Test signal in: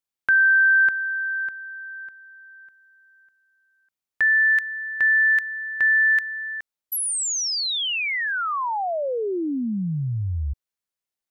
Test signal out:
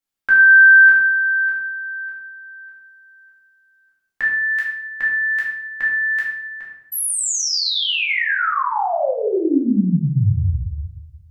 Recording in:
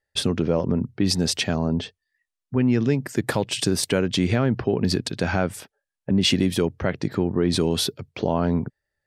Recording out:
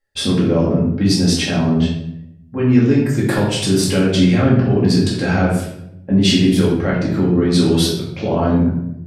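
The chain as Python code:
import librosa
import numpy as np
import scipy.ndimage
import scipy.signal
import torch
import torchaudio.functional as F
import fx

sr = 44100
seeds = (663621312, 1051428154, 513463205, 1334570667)

y = fx.room_shoebox(x, sr, seeds[0], volume_m3=210.0, walls='mixed', distance_m=2.2)
y = y * 10.0 ** (-2.0 / 20.0)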